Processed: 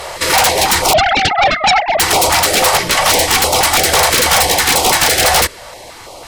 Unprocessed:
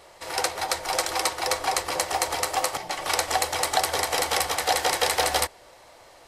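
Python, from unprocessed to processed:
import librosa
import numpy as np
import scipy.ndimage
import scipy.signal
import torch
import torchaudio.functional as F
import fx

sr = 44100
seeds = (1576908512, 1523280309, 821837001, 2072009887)

y = fx.sine_speech(x, sr, at=(0.93, 2.0))
y = fx.rider(y, sr, range_db=4, speed_s=0.5)
y = fx.fold_sine(y, sr, drive_db=19, ceiling_db=-5.0)
y = fx.filter_held_notch(y, sr, hz=6.1, low_hz=270.0, high_hz=1700.0)
y = F.gain(torch.from_numpy(y), -1.0).numpy()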